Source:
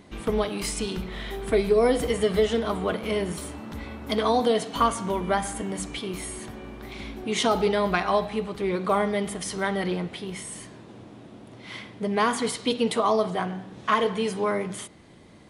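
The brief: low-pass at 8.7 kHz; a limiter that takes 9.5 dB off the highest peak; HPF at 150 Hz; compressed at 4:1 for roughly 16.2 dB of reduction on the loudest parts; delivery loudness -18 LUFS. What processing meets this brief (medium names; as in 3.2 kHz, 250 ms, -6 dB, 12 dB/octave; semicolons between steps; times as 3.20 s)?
high-pass 150 Hz; low-pass 8.7 kHz; compression 4:1, threshold -37 dBFS; trim +22.5 dB; peak limiter -7.5 dBFS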